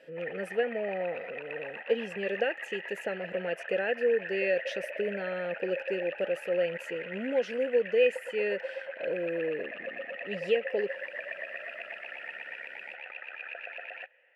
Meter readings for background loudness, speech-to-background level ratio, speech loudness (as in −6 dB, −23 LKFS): −39.5 LKFS, 7.5 dB, −32.0 LKFS